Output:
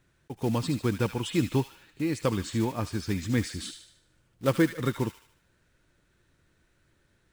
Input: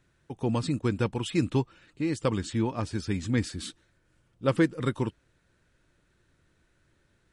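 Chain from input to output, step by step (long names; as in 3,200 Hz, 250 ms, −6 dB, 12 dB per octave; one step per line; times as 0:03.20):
one scale factor per block 5 bits
on a send: delay with a high-pass on its return 75 ms, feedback 47%, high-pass 1,800 Hz, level −7 dB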